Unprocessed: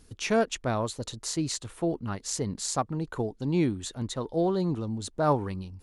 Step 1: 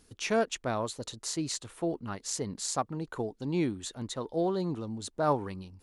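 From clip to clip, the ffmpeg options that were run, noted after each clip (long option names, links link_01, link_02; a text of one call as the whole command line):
ffmpeg -i in.wav -af "lowshelf=frequency=140:gain=-8.5,volume=-2dB" out.wav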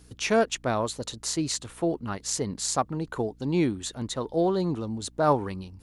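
ffmpeg -i in.wav -af "aeval=exprs='val(0)+0.00112*(sin(2*PI*60*n/s)+sin(2*PI*2*60*n/s)/2+sin(2*PI*3*60*n/s)/3+sin(2*PI*4*60*n/s)/4+sin(2*PI*5*60*n/s)/5)':channel_layout=same,volume=5dB" out.wav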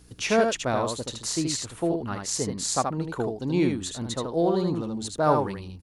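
ffmpeg -i in.wav -af "aecho=1:1:77:0.596" out.wav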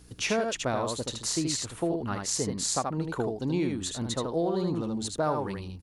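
ffmpeg -i in.wav -af "acompressor=threshold=-24dB:ratio=6" out.wav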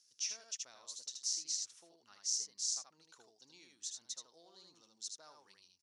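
ffmpeg -i in.wav -af "bandpass=frequency=5700:width_type=q:width=5.3:csg=0" out.wav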